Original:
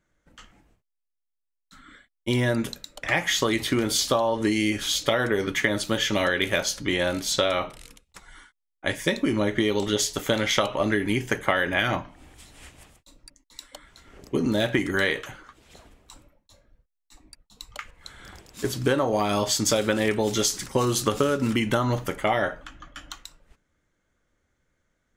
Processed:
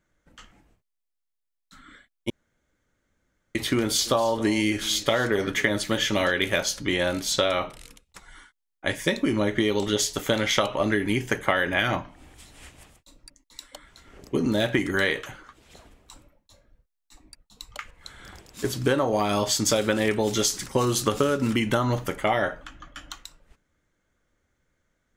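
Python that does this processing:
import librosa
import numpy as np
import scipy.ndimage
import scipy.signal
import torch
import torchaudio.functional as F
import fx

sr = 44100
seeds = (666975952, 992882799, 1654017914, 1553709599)

y = fx.echo_single(x, sr, ms=268, db=-17.5, at=(4.05, 6.3), fade=0.02)
y = fx.edit(y, sr, fx.room_tone_fill(start_s=2.3, length_s=1.25), tone=tone)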